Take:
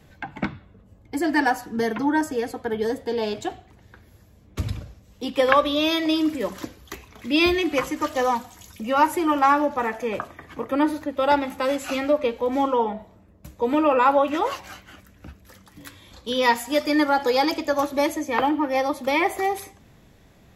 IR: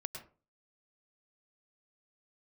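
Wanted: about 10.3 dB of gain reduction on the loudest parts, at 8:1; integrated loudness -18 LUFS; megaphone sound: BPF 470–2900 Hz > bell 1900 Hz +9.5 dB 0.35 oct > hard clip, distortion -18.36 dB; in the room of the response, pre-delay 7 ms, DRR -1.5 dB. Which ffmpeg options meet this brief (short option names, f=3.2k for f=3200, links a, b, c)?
-filter_complex "[0:a]acompressor=threshold=-23dB:ratio=8,asplit=2[a][b];[1:a]atrim=start_sample=2205,adelay=7[c];[b][c]afir=irnorm=-1:irlink=0,volume=3dB[d];[a][d]amix=inputs=2:normalize=0,highpass=470,lowpass=2.9k,equalizer=f=1.9k:t=o:w=0.35:g=9.5,asoftclip=type=hard:threshold=-17dB,volume=8.5dB"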